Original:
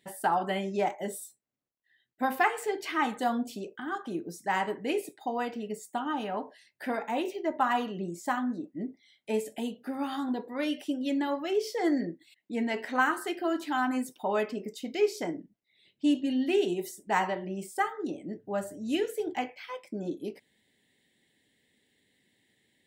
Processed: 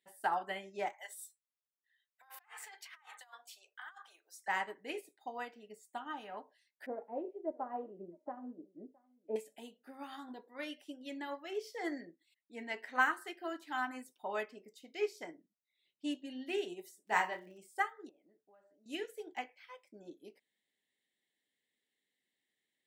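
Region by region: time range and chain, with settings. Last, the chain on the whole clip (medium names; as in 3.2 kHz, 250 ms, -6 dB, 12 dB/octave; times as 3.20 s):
0.93–4.48 s: high-pass 830 Hz 24 dB/octave + compressor with a negative ratio -43 dBFS
6.86–9.36 s: resonant low-pass 520 Hz, resonance Q 1.9 + delay 665 ms -19.5 dB
17.06–17.58 s: doubling 28 ms -5 dB + crackle 350 per s -49 dBFS
18.09–18.86 s: high-pass 610 Hz 6 dB/octave + compression, threshold -42 dBFS + tape spacing loss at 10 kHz 36 dB
whole clip: high-pass 540 Hz 6 dB/octave; dynamic bell 1.9 kHz, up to +4 dB, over -48 dBFS, Q 2.5; upward expansion 1.5:1, over -45 dBFS; trim -3.5 dB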